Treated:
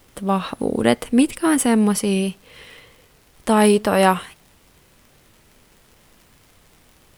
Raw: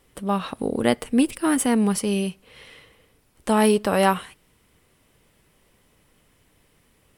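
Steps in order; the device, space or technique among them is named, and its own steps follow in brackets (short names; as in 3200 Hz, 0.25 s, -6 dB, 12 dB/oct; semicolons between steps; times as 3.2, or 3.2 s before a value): vinyl LP (wow and flutter; crackle; pink noise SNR 35 dB); gain +3.5 dB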